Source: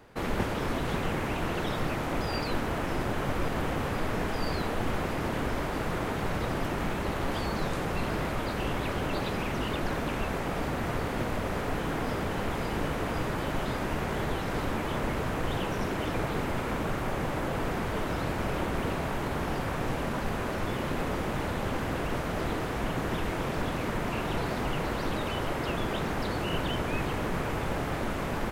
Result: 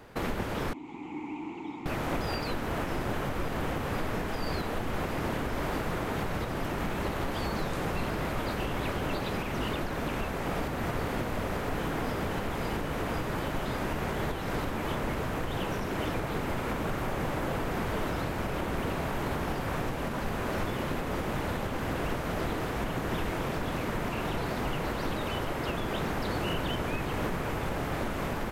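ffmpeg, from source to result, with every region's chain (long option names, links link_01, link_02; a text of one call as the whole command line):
ffmpeg -i in.wav -filter_complex "[0:a]asettb=1/sr,asplit=3[link_01][link_02][link_03];[link_01]atrim=end=0.734[link_04];[link_02]atrim=start=0.73:end=1.86,asetpts=PTS-STARTPTS,afade=type=in:duration=0.004:curve=qsin,afade=type=out:start_time=1.126:duration=0.004:curve=qsin,asplit=3[link_05][link_06][link_07];[link_05]bandpass=frequency=300:width_type=q:width=8,volume=0dB[link_08];[link_06]bandpass=frequency=870:width_type=q:width=8,volume=-6dB[link_09];[link_07]bandpass=frequency=2240:width_type=q:width=8,volume=-9dB[link_10];[link_08][link_09][link_10]amix=inputs=3:normalize=0,equalizer=frequency=7100:width_type=o:width=0.42:gain=12.5[link_11];[link_03]atrim=start=1.856[link_12];[link_04][link_11]acrossfade=duration=0.004:curve1=hsin:curve2=qsin[link_13];[link_13][link_12]acrossfade=duration=0.004:curve1=qsin:curve2=hsin,equalizer=frequency=13000:width=6.9:gain=6.5,alimiter=level_in=1dB:limit=-24dB:level=0:latency=1:release=462,volume=-1dB,volume=3.5dB" out.wav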